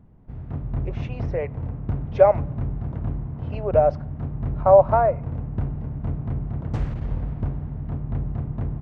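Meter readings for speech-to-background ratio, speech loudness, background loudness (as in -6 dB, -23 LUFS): 10.5 dB, -19.5 LUFS, -30.0 LUFS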